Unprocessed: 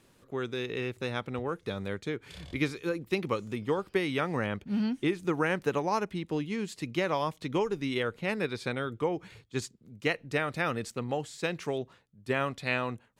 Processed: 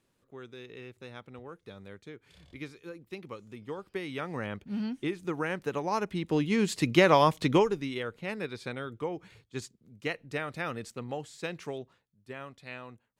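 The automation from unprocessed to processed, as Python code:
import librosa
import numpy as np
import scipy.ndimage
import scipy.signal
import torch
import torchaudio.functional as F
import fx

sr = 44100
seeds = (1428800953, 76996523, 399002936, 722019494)

y = fx.gain(x, sr, db=fx.line((3.36, -12.0), (4.49, -4.0), (5.7, -4.0), (6.7, 8.5), (7.49, 8.5), (7.93, -4.5), (11.67, -4.5), (12.31, -13.0)))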